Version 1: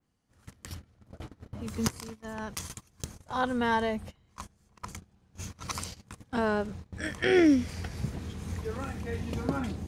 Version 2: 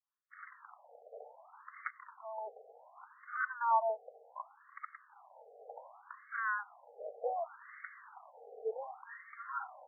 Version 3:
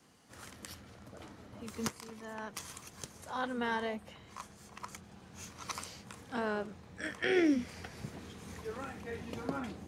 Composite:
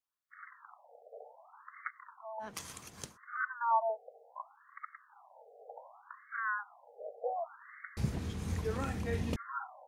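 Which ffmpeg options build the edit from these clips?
ffmpeg -i take0.wav -i take1.wav -i take2.wav -filter_complex "[1:a]asplit=3[link_01][link_02][link_03];[link_01]atrim=end=2.49[link_04];[2:a]atrim=start=2.39:end=3.18[link_05];[link_02]atrim=start=3.08:end=7.972[link_06];[0:a]atrim=start=7.968:end=9.362[link_07];[link_03]atrim=start=9.358[link_08];[link_04][link_05]acrossfade=duration=0.1:curve1=tri:curve2=tri[link_09];[link_09][link_06]acrossfade=duration=0.1:curve1=tri:curve2=tri[link_10];[link_10][link_07]acrossfade=duration=0.004:curve1=hsin:curve2=hsin[link_11];[link_11][link_08]acrossfade=duration=0.004:curve1=hsin:curve2=hsin" out.wav

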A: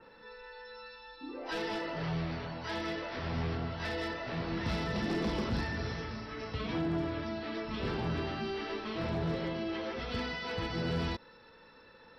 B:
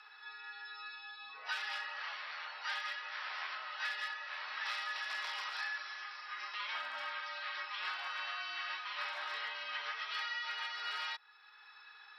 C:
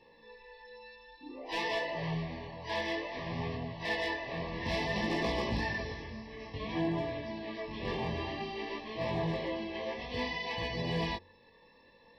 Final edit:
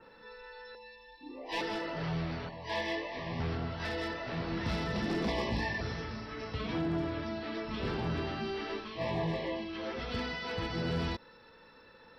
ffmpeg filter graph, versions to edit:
ffmpeg -i take0.wav -i take1.wav -i take2.wav -filter_complex "[2:a]asplit=4[link_01][link_02][link_03][link_04];[0:a]asplit=5[link_05][link_06][link_07][link_08][link_09];[link_05]atrim=end=0.752[link_10];[link_01]atrim=start=0.748:end=1.612[link_11];[link_06]atrim=start=1.608:end=2.492[link_12];[link_02]atrim=start=2.488:end=3.402[link_13];[link_07]atrim=start=3.398:end=5.282[link_14];[link_03]atrim=start=5.278:end=5.812[link_15];[link_08]atrim=start=5.808:end=9.01[link_16];[link_04]atrim=start=8.77:end=9.84[link_17];[link_09]atrim=start=9.6[link_18];[link_10][link_11]acrossfade=duration=0.004:curve1=hsin:curve2=hsin[link_19];[link_19][link_12]acrossfade=duration=0.004:curve1=hsin:curve2=hsin[link_20];[link_20][link_13]acrossfade=duration=0.004:curve1=hsin:curve2=hsin[link_21];[link_21][link_14]acrossfade=duration=0.004:curve1=hsin:curve2=hsin[link_22];[link_22][link_15]acrossfade=duration=0.004:curve1=hsin:curve2=hsin[link_23];[link_23][link_16]acrossfade=duration=0.004:curve1=hsin:curve2=hsin[link_24];[link_24][link_17]acrossfade=duration=0.24:curve1=tri:curve2=tri[link_25];[link_25][link_18]acrossfade=duration=0.24:curve1=tri:curve2=tri" out.wav

